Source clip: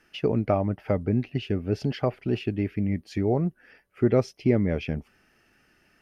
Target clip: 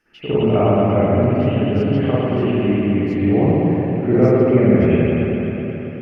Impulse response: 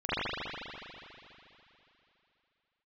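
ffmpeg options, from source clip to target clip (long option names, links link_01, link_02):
-filter_complex "[0:a]asettb=1/sr,asplit=3[link_01][link_02][link_03];[link_01]atrim=end=1.324[link_04];[link_02]atrim=start=1.32:end=2.67,asetpts=PTS-STARTPTS,afade=type=in:duration=0.004:curve=qsin,afade=type=out:start_time=1.346:duration=0.004:curve=qsin,acrossover=split=330[link_05][link_06];[link_06]acompressor=threshold=-25dB:ratio=6[link_07];[link_05][link_07]amix=inputs=2:normalize=0[link_08];[link_03]atrim=start=2.666[link_09];[link_04][link_08]acrossfade=duration=0.004:curve1=hsin:curve2=qsin[link_10];[link_10][link_09]acrossfade=duration=0.004:curve1=qsin:curve2=hsin[link_11];[1:a]atrim=start_sample=2205,asetrate=33075,aresample=44100[link_12];[link_11][link_12]afir=irnorm=-1:irlink=0,volume=-5dB"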